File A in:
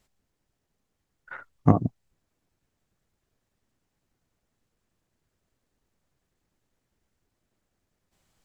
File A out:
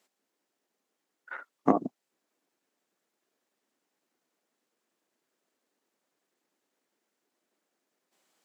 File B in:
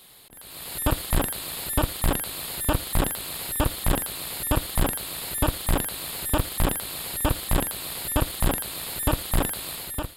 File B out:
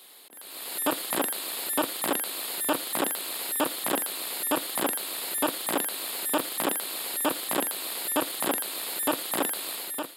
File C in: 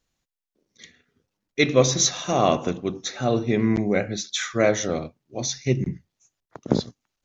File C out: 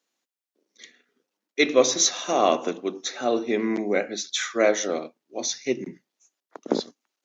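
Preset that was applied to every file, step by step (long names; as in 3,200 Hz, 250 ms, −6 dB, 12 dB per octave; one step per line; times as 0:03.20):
high-pass filter 260 Hz 24 dB per octave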